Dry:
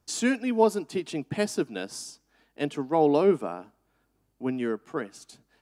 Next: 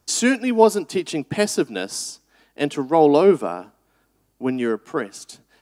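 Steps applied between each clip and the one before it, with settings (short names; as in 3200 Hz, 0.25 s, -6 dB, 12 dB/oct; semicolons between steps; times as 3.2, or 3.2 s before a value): tone controls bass -3 dB, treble +3 dB; gain +7.5 dB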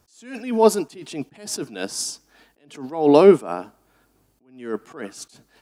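attack slew limiter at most 120 dB/s; gain +3 dB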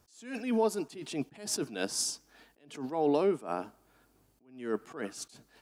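compressor 6:1, threshold -20 dBFS, peak gain reduction 13.5 dB; gain -4.5 dB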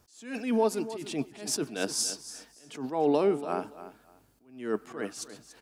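feedback echo 0.287 s, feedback 21%, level -14 dB; gain +2.5 dB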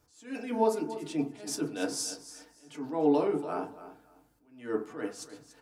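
FDN reverb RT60 0.37 s, low-frequency decay 1×, high-frequency decay 0.35×, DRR -0.5 dB; gain -6 dB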